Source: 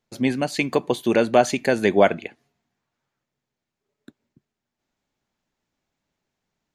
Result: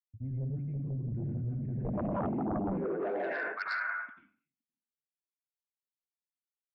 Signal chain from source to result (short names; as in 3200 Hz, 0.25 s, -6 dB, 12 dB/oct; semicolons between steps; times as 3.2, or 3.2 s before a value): delay with a stepping band-pass 0.517 s, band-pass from 200 Hz, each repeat 1.4 oct, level -2 dB; low-pass opened by the level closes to 470 Hz, open at -17 dBFS; gate -39 dBFS, range -36 dB; EQ curve 290 Hz 0 dB, 620 Hz -16 dB, 2100 Hz +12 dB, 3200 Hz +1 dB; low-pass sweep 110 Hz -> 3400 Hz, 1.56–4.28; high shelf 3400 Hz +5.5 dB; plate-style reverb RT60 0.65 s, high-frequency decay 0.65×, pre-delay 75 ms, DRR -6.5 dB; sine folder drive 12 dB, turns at -5 dBFS; limiter -15.5 dBFS, peak gain reduction 10.5 dB; reverse; compressor 4:1, threshold -35 dBFS, peak gain reduction 14.5 dB; reverse; three-band expander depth 100%